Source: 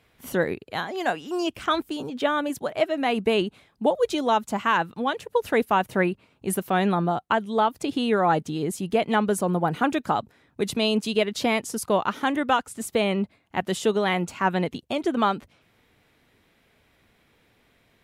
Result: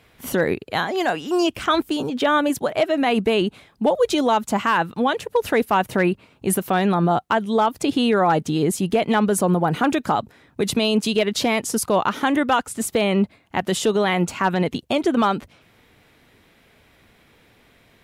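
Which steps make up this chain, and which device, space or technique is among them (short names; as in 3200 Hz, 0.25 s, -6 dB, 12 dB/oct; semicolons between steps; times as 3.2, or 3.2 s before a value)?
clipper into limiter (hard clip -12.5 dBFS, distortion -29 dB; limiter -17.5 dBFS, peak gain reduction 5 dB); gain +7.5 dB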